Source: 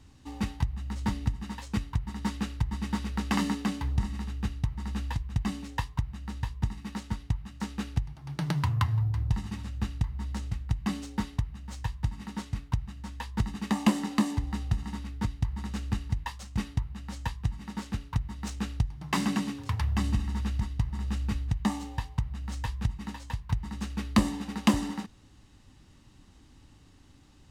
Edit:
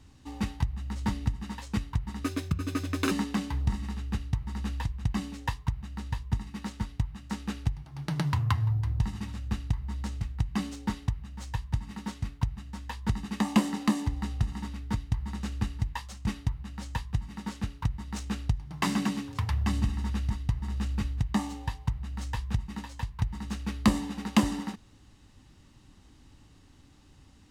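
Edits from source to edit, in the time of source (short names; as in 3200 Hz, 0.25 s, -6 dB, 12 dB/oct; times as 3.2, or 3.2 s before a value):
2.24–3.42 speed 135%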